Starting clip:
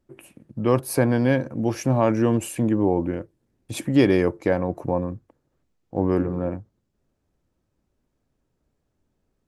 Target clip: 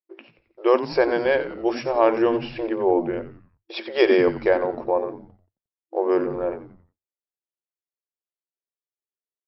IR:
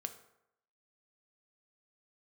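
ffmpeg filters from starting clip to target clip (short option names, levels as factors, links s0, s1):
-filter_complex "[0:a]afftfilt=real='re*between(b*sr/4096,330,5600)':imag='im*between(b*sr/4096,330,5600)':win_size=4096:overlap=0.75,agate=range=0.0224:threshold=0.00398:ratio=3:detection=peak,asplit=2[s0][s1];[s1]asplit=4[s2][s3][s4][s5];[s2]adelay=89,afreqshift=-110,volume=0.251[s6];[s3]adelay=178,afreqshift=-220,volume=0.106[s7];[s4]adelay=267,afreqshift=-330,volume=0.0442[s8];[s5]adelay=356,afreqshift=-440,volume=0.0186[s9];[s6][s7][s8][s9]amix=inputs=4:normalize=0[s10];[s0][s10]amix=inputs=2:normalize=0,volume=1.5"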